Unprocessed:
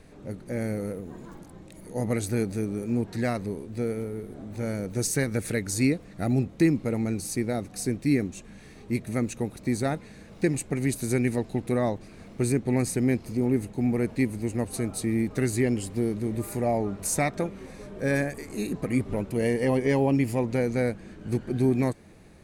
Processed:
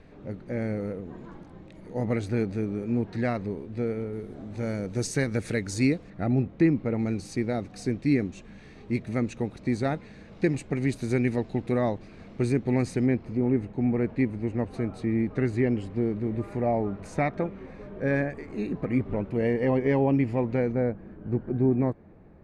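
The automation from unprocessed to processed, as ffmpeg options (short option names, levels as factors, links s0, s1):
-af "asetnsamples=n=441:p=0,asendcmd='4.13 lowpass f 5700;6.1 lowpass f 2500;6.99 lowpass f 4300;13.06 lowpass f 2300;20.72 lowpass f 1200',lowpass=3400"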